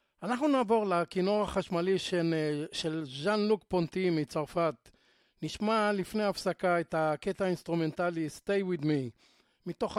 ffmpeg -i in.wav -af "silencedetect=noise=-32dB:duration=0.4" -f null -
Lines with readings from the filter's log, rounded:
silence_start: 4.70
silence_end: 5.43 | silence_duration: 0.73
silence_start: 9.07
silence_end: 9.67 | silence_duration: 0.60